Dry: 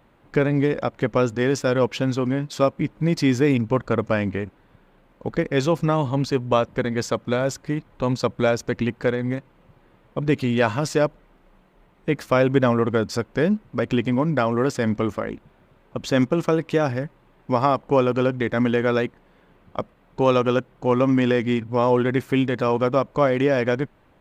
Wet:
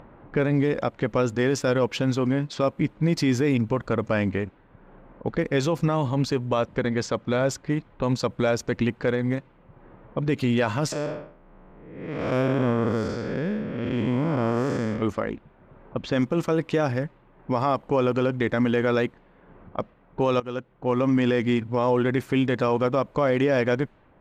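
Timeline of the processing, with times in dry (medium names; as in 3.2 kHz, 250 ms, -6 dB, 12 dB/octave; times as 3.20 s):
6.66–7.50 s: Bessel low-pass 6.8 kHz
10.92–15.02 s: spectral blur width 282 ms
20.40–21.47 s: fade in equal-power, from -18.5 dB
whole clip: level-controlled noise filter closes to 1.4 kHz, open at -19 dBFS; upward compressor, threshold -39 dBFS; peak limiter -13 dBFS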